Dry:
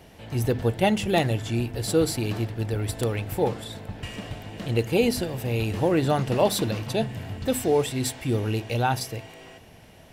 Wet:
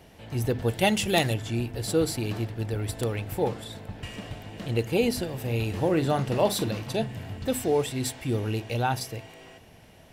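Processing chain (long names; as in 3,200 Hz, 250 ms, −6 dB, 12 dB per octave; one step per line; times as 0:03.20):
0:00.68–0:01.34: high-shelf EQ 2,500 Hz +9.5 dB
0:05.32–0:07.00: double-tracking delay 43 ms −13 dB
level −2.5 dB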